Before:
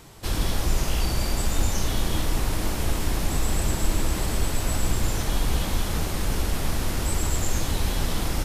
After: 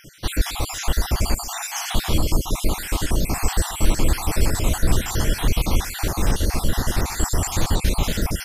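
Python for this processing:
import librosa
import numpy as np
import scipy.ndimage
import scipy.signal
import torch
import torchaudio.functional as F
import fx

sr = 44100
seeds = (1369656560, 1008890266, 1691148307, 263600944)

y = fx.spec_dropout(x, sr, seeds[0], share_pct=51)
y = y + 10.0 ** (-17.5 / 20.0) * np.pad(y, (int(135 * sr / 1000.0), 0))[:len(y)]
y = F.gain(torch.from_numpy(y), 6.5).numpy()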